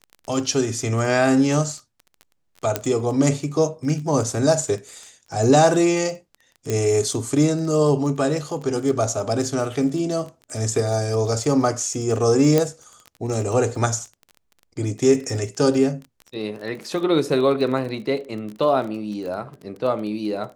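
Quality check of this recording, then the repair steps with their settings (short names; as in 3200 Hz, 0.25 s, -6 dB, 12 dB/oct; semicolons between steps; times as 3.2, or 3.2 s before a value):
crackle 24/s -30 dBFS
2.76 pop -5 dBFS
6.7 pop -11 dBFS
12.58 pop -5 dBFS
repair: de-click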